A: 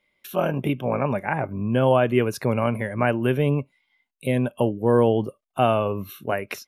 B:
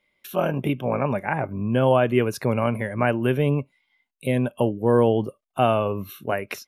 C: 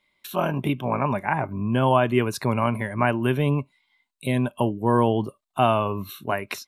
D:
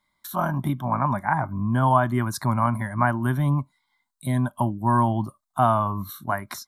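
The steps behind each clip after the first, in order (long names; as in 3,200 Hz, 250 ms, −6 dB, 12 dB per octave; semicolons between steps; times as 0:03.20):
no processing that can be heard
thirty-one-band graphic EQ 500 Hz −8 dB, 1,000 Hz +7 dB, 4,000 Hz +8 dB, 8,000 Hz +6 dB
phaser with its sweep stopped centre 1,100 Hz, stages 4; level +3 dB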